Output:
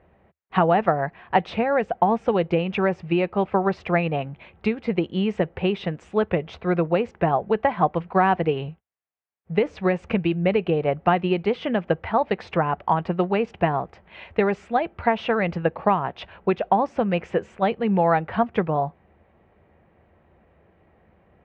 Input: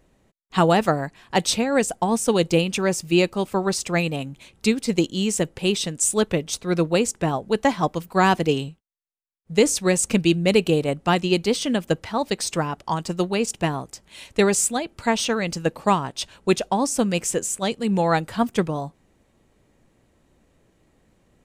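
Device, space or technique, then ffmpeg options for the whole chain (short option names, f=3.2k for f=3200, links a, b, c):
bass amplifier: -af "acompressor=threshold=-21dB:ratio=6,highpass=67,equalizer=f=78:t=q:w=4:g=7,equalizer=f=120:t=q:w=4:g=-7,equalizer=f=270:t=q:w=4:g=-10,equalizer=f=730:t=q:w=4:g=5,lowpass=f=2.4k:w=0.5412,lowpass=f=2.4k:w=1.3066,volume=5dB"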